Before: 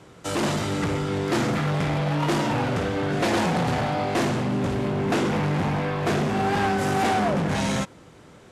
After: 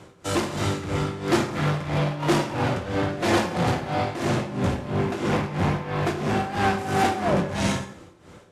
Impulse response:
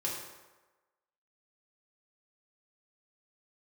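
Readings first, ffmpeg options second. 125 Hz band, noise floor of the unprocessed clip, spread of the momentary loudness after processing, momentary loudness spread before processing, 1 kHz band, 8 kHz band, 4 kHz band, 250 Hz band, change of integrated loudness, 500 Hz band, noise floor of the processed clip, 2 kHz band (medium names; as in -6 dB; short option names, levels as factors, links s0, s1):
-0.5 dB, -49 dBFS, 4 LU, 3 LU, -0.5 dB, -0.5 dB, -0.5 dB, -1.0 dB, -0.5 dB, -0.5 dB, -49 dBFS, -0.5 dB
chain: -filter_complex "[0:a]equalizer=f=87:t=o:w=0.21:g=9,tremolo=f=3:d=0.8,asplit=2[s0][s1];[1:a]atrim=start_sample=2205,afade=t=out:st=0.25:d=0.01,atrim=end_sample=11466[s2];[s1][s2]afir=irnorm=-1:irlink=0,volume=0.422[s3];[s0][s3]amix=inputs=2:normalize=0"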